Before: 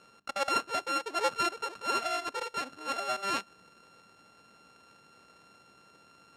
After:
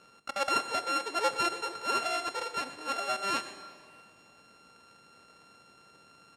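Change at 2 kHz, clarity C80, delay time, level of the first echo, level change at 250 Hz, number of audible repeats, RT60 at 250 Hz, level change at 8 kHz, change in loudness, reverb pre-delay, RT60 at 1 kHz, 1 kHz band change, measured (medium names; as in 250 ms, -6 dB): +1.0 dB, 11.0 dB, 119 ms, -15.0 dB, +0.5 dB, 2, 2.4 s, +1.5 dB, +1.0 dB, 17 ms, 2.4 s, +0.5 dB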